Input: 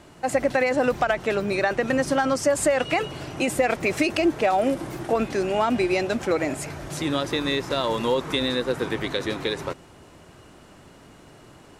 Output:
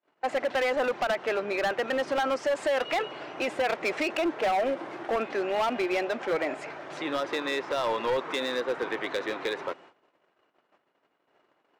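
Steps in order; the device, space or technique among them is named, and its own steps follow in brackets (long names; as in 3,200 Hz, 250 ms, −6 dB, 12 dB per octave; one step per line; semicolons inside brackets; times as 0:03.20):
walkie-talkie (band-pass filter 450–2,700 Hz; hard clipping −22.5 dBFS, distortion −10 dB; noise gate −50 dBFS, range −37 dB)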